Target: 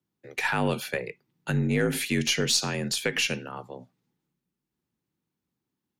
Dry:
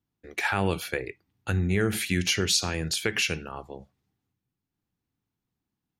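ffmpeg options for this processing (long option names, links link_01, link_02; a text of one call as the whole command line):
ffmpeg -i in.wav -af "afreqshift=51,aeval=exprs='0.282*(cos(1*acos(clip(val(0)/0.282,-1,1)))-cos(1*PI/2))+0.00631*(cos(6*acos(clip(val(0)/0.282,-1,1)))-cos(6*PI/2))':channel_layout=same" out.wav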